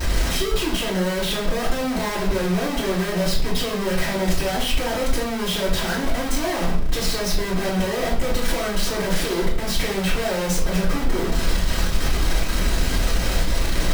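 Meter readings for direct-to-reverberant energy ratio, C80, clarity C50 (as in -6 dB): -9.0 dB, 10.5 dB, 6.0 dB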